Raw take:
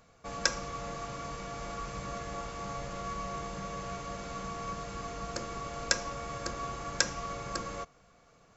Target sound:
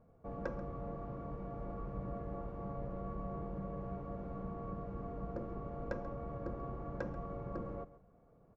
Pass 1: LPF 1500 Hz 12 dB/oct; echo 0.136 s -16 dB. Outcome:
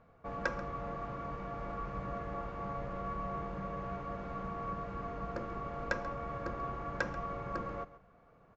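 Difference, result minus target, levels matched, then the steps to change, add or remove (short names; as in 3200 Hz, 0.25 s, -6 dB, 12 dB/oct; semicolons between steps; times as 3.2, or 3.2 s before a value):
2000 Hz band +10.0 dB
change: LPF 590 Hz 12 dB/oct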